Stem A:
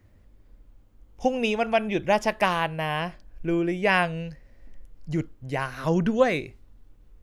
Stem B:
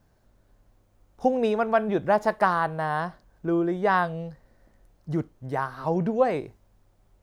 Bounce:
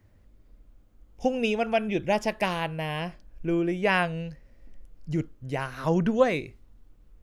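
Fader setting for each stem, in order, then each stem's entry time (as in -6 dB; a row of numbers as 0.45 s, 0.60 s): -2.5 dB, -11.0 dB; 0.00 s, 0.00 s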